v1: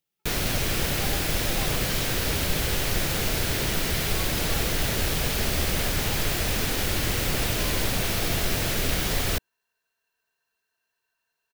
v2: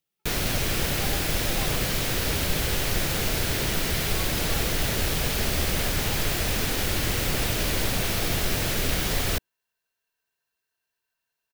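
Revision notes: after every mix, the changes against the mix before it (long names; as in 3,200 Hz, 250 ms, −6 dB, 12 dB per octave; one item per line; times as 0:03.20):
second sound −5.5 dB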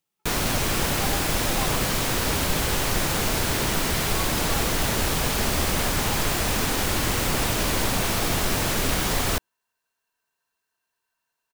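master: add octave-band graphic EQ 250/1,000/8,000 Hz +4/+8/+4 dB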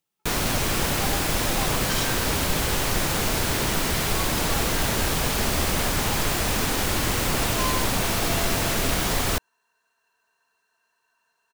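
second sound +11.5 dB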